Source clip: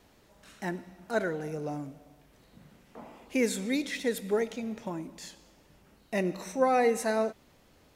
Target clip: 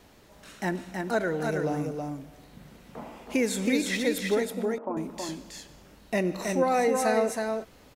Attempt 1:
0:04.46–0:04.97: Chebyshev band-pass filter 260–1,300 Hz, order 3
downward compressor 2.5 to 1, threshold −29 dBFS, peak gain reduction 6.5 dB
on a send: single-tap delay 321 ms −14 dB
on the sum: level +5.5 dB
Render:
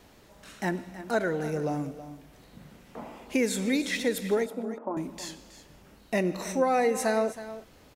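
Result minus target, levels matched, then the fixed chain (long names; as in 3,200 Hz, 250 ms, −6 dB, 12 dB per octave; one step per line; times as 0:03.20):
echo-to-direct −10 dB
0:04.46–0:04.97: Chebyshev band-pass filter 260–1,300 Hz, order 3
downward compressor 2.5 to 1, threshold −29 dBFS, peak gain reduction 6.5 dB
on a send: single-tap delay 321 ms −4 dB
on the sum: level +5.5 dB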